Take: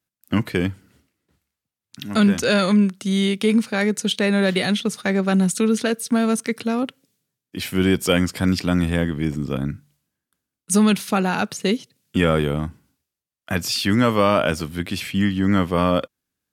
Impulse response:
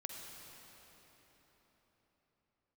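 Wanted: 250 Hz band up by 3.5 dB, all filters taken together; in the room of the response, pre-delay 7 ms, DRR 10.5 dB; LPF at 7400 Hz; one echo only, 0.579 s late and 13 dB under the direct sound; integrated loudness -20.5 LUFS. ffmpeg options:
-filter_complex "[0:a]lowpass=7.4k,equalizer=f=250:t=o:g=4.5,aecho=1:1:579:0.224,asplit=2[a][b];[1:a]atrim=start_sample=2205,adelay=7[c];[b][c]afir=irnorm=-1:irlink=0,volume=-8.5dB[d];[a][d]amix=inputs=2:normalize=0,volume=-2dB"

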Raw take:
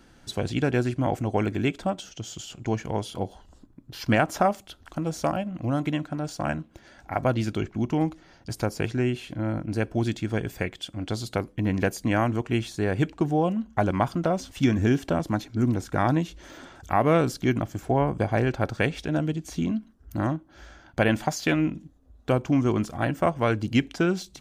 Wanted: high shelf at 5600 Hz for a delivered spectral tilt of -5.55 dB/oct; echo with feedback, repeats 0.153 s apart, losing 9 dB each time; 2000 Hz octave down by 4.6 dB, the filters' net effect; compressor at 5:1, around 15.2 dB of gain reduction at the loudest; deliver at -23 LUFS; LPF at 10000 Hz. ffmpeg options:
-af "lowpass=10k,equalizer=f=2k:t=o:g=-7,highshelf=f=5.6k:g=6.5,acompressor=threshold=-35dB:ratio=5,aecho=1:1:153|306|459|612:0.355|0.124|0.0435|0.0152,volume=15.5dB"

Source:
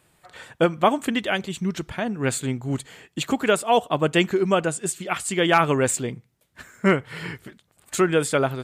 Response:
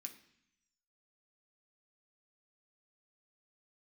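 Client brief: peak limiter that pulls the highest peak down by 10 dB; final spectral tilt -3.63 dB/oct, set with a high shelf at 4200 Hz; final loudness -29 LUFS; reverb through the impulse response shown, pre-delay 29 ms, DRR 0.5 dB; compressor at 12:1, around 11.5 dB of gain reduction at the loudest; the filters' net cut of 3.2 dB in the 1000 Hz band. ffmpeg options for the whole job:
-filter_complex "[0:a]equalizer=f=1k:t=o:g=-5,highshelf=f=4.2k:g=5.5,acompressor=threshold=-26dB:ratio=12,alimiter=level_in=0.5dB:limit=-24dB:level=0:latency=1,volume=-0.5dB,asplit=2[a][b];[1:a]atrim=start_sample=2205,adelay=29[c];[b][c]afir=irnorm=-1:irlink=0,volume=5.5dB[d];[a][d]amix=inputs=2:normalize=0,volume=2.5dB"

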